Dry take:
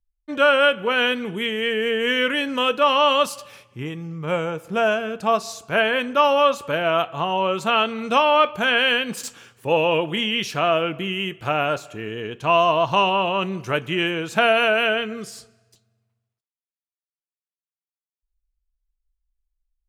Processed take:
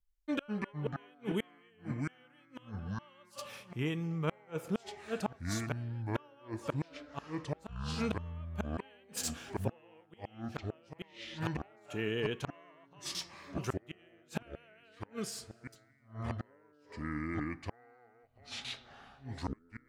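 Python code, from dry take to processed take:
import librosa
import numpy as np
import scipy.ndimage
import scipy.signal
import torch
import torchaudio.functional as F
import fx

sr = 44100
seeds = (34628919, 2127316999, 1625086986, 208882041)

y = fx.gate_flip(x, sr, shuts_db=-17.0, range_db=-39)
y = fx.echo_pitch(y, sr, ms=89, semitones=-6, count=2, db_per_echo=-3.0)
y = y * 10.0 ** (-4.0 / 20.0)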